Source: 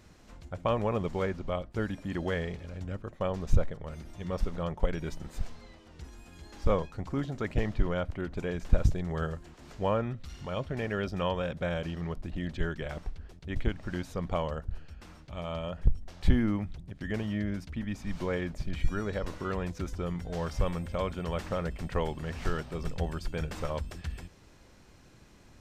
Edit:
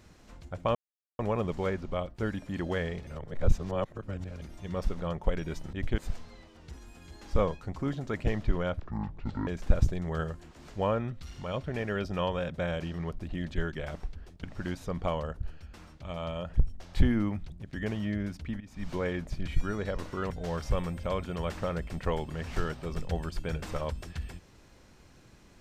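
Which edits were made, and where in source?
0.75 s: insert silence 0.44 s
2.63–3.98 s: reverse
8.11–8.50 s: speed 58%
13.46–13.71 s: move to 5.29 s
17.88–18.18 s: fade in, from -20.5 dB
19.58–20.19 s: delete

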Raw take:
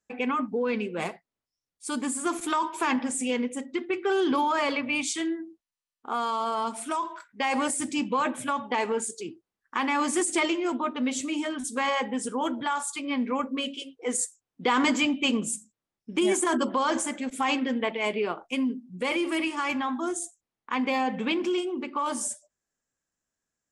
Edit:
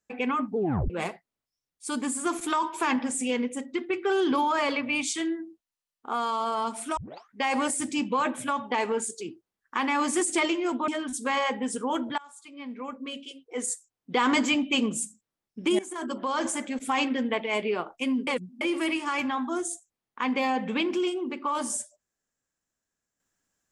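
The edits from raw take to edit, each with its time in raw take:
0.56 s: tape stop 0.34 s
6.97 s: tape start 0.35 s
10.88–11.39 s: delete
12.69–14.79 s: fade in, from -23 dB
16.30–17.11 s: fade in, from -18.5 dB
18.78–19.12 s: reverse

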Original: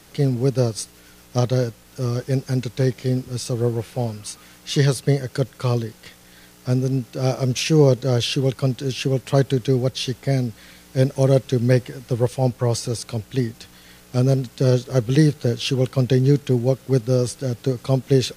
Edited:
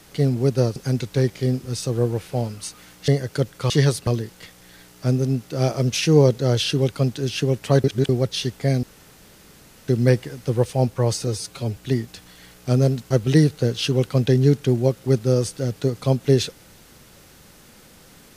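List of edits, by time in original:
0.76–2.39 s: delete
4.71–5.08 s: move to 5.70 s
9.47–9.72 s: reverse
10.46–11.51 s: room tone
12.90–13.23 s: stretch 1.5×
14.57–14.93 s: delete

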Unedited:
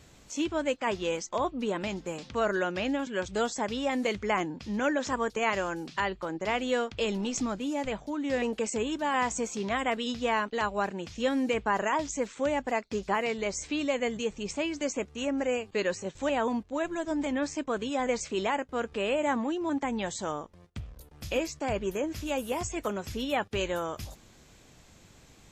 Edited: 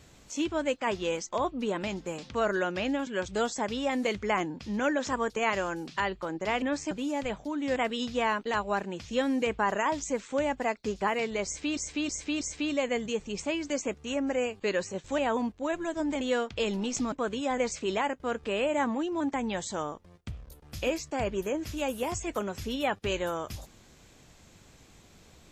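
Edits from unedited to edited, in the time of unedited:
6.62–7.53 s: swap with 17.32–17.61 s
8.38–9.83 s: delete
13.52–13.84 s: loop, 4 plays

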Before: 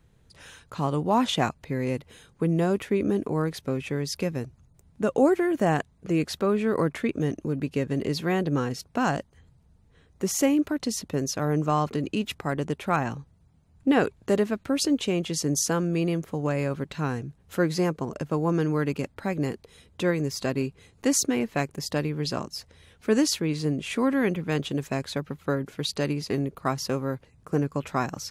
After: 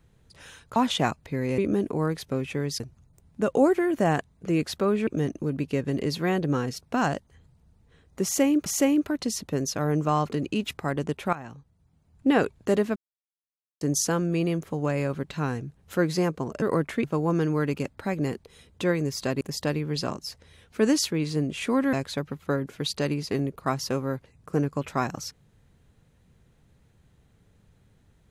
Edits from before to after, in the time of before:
0.76–1.14 s: delete
1.96–2.94 s: delete
4.16–4.41 s: delete
6.68–7.10 s: move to 18.23 s
10.27–10.69 s: loop, 2 plays
12.94–13.92 s: fade in, from -15.5 dB
14.57–15.42 s: mute
20.60–21.70 s: delete
24.22–24.92 s: delete

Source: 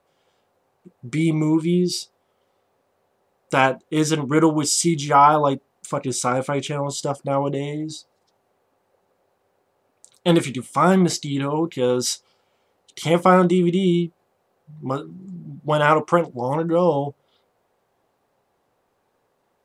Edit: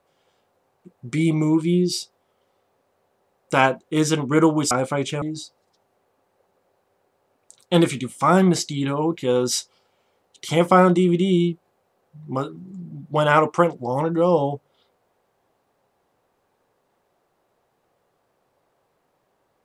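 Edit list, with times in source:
4.71–6.28 s: delete
6.79–7.76 s: delete

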